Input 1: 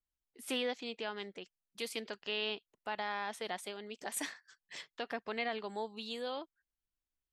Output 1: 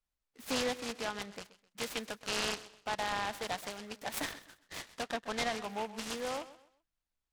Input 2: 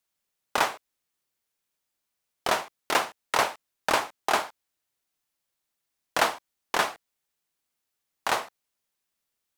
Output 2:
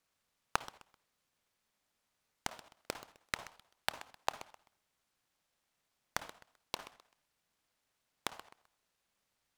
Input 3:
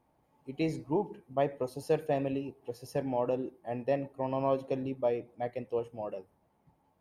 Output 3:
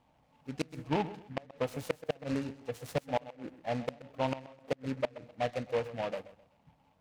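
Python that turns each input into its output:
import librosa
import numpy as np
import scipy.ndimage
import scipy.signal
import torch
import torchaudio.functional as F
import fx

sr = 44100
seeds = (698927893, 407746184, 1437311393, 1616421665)

y = scipy.signal.sosfilt(scipy.signal.butter(2, 9000.0, 'lowpass', fs=sr, output='sos'), x)
y = fx.peak_eq(y, sr, hz=370.0, db=-14.5, octaves=0.3)
y = fx.gate_flip(y, sr, shuts_db=-22.0, range_db=-31)
y = fx.echo_feedback(y, sr, ms=129, feedback_pct=30, wet_db=-16)
y = fx.noise_mod_delay(y, sr, seeds[0], noise_hz=1600.0, depth_ms=0.069)
y = y * librosa.db_to_amplitude(3.5)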